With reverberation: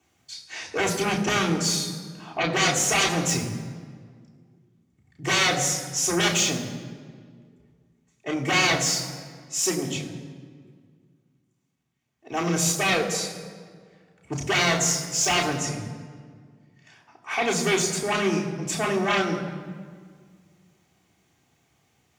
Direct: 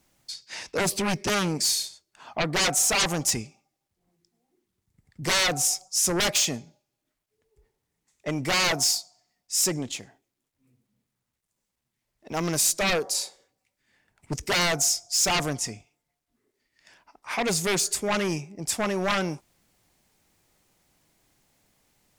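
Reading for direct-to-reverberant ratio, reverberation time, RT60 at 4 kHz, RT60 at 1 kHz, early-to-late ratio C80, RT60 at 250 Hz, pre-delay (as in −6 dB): −2.0 dB, 1.8 s, 1.2 s, 1.7 s, 9.5 dB, 2.4 s, 3 ms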